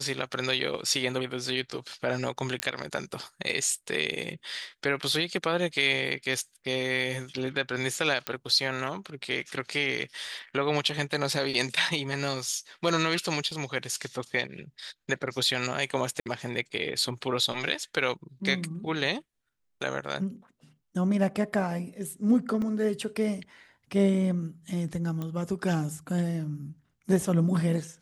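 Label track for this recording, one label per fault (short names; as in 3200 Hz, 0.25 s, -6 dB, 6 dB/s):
2.600000	2.600000	pop -11 dBFS
8.270000	8.270000	pop -13 dBFS
13.510000	13.510000	gap 2.5 ms
16.200000	16.260000	gap 58 ms
22.620000	22.620000	gap 2.1 ms
25.220000	25.220000	pop -22 dBFS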